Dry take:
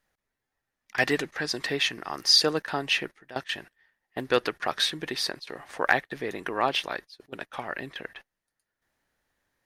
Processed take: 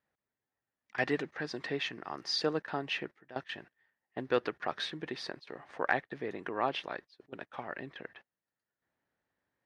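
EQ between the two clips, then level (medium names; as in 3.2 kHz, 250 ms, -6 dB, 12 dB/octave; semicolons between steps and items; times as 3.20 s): high-pass 90 Hz 12 dB/octave; tape spacing loss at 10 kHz 26 dB; treble shelf 5.6 kHz +5 dB; -4.0 dB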